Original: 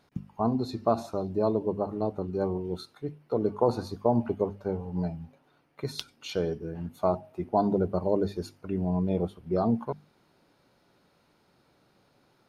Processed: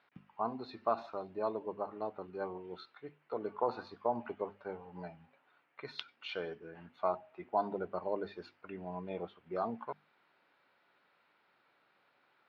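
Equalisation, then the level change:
resonant band-pass 1,900 Hz, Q 0.88
high-frequency loss of the air 340 metres
high-shelf EQ 2,200 Hz +7.5 dB
+1.0 dB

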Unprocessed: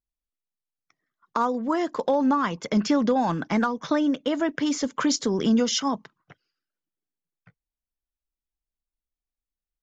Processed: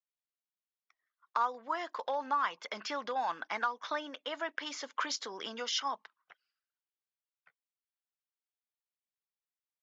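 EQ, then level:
flat-topped band-pass 2,000 Hz, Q 0.5
−4.5 dB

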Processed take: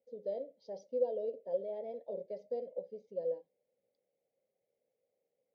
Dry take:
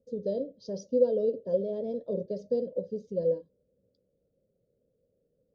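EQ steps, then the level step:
pair of resonant band-passes 1,300 Hz, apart 1.4 octaves
+7.5 dB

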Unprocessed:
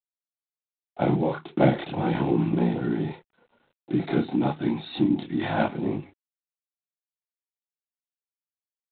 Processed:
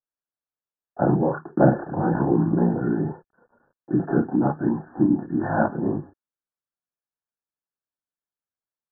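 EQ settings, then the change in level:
linear-phase brick-wall low-pass 1,800 Hz
+3.0 dB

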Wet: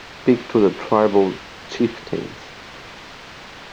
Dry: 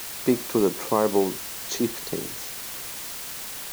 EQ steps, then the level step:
high-frequency loss of the air 200 metres
high-shelf EQ 6,900 Hz −9 dB
dynamic equaliser 2,600 Hz, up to +4 dB, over −43 dBFS, Q 0.86
+6.5 dB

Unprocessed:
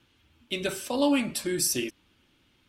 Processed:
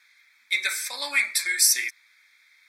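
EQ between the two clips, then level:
high-pass with resonance 2,100 Hz, resonance Q 4
Butterworth band-reject 2,900 Hz, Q 2.1
+7.5 dB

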